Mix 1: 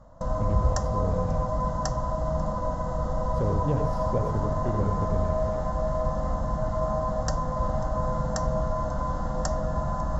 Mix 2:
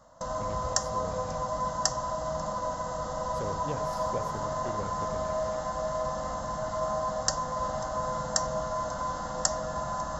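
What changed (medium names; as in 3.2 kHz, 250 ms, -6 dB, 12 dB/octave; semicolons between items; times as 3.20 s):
speech: send -9.5 dB; master: add tilt EQ +3.5 dB/octave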